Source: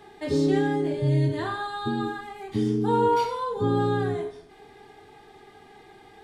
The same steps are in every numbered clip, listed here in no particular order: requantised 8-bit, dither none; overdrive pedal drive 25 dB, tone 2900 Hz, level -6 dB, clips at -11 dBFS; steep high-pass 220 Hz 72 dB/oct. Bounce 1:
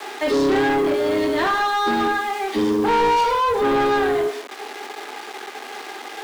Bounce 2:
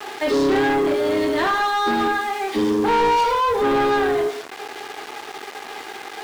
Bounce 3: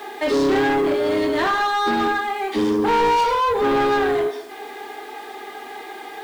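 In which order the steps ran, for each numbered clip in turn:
requantised > steep high-pass > overdrive pedal; steep high-pass > requantised > overdrive pedal; steep high-pass > overdrive pedal > requantised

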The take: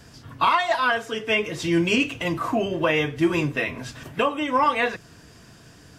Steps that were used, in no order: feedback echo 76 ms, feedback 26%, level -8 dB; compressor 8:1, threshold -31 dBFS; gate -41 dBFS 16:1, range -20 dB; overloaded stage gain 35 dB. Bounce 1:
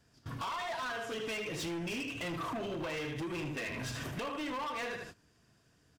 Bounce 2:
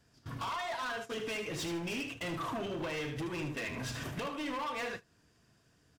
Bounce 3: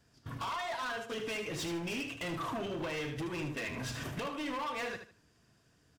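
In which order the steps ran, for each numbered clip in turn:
feedback echo > gate > compressor > overloaded stage; compressor > overloaded stage > feedback echo > gate; compressor > gate > overloaded stage > feedback echo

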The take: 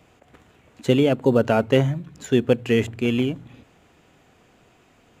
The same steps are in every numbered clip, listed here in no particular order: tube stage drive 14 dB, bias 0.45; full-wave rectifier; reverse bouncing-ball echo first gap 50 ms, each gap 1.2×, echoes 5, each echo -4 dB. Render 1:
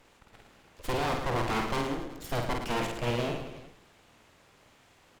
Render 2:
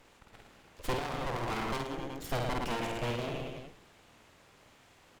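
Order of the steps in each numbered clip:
full-wave rectifier > tube stage > reverse bouncing-ball echo; full-wave rectifier > reverse bouncing-ball echo > tube stage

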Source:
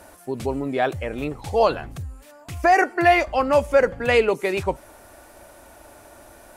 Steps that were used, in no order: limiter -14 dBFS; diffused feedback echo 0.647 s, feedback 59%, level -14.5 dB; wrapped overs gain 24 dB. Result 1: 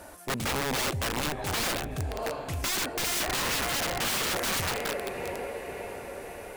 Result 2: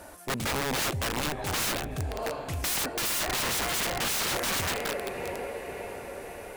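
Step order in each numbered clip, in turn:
diffused feedback echo > limiter > wrapped overs; diffused feedback echo > wrapped overs > limiter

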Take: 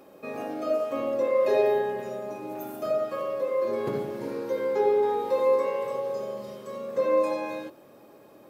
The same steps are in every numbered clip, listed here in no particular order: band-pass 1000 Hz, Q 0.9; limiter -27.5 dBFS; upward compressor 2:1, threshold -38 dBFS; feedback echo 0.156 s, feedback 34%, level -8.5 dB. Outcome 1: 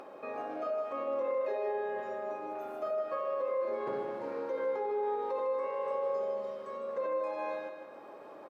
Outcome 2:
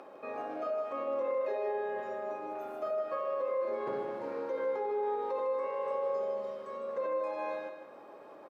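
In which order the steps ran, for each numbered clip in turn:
band-pass > limiter > feedback echo > upward compressor; upward compressor > band-pass > limiter > feedback echo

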